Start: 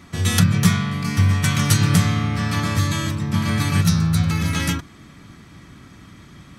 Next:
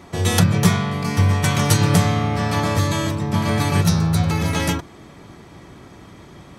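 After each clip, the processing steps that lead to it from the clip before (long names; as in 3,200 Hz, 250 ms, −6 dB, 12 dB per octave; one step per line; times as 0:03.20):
flat-topped bell 580 Hz +9.5 dB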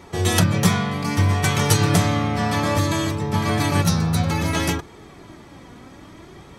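flanger 0.61 Hz, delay 2.1 ms, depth 2.1 ms, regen +50%
level +4 dB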